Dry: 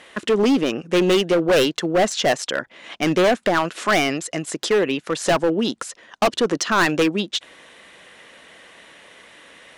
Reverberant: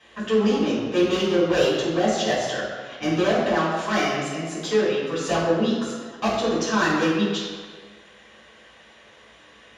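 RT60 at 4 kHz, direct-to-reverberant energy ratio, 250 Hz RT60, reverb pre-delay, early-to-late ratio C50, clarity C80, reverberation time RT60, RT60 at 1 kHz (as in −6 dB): 1.2 s, −10.0 dB, 1.6 s, 3 ms, 0.5 dB, 2.5 dB, 1.7 s, 1.7 s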